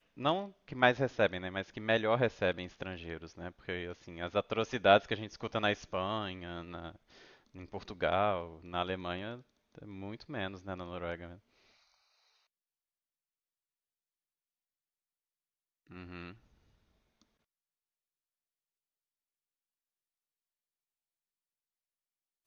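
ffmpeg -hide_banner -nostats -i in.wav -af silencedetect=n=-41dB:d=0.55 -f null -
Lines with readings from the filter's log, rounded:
silence_start: 6.90
silence_end: 7.57 | silence_duration: 0.67
silence_start: 11.32
silence_end: 15.96 | silence_duration: 4.64
silence_start: 16.31
silence_end: 22.47 | silence_duration: 6.16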